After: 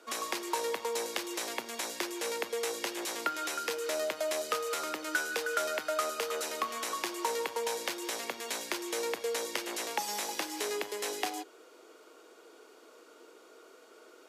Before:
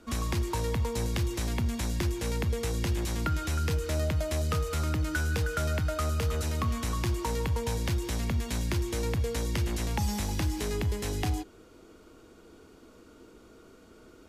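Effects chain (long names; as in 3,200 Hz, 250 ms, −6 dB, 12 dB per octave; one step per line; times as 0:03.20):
high-pass filter 400 Hz 24 dB per octave
level +2 dB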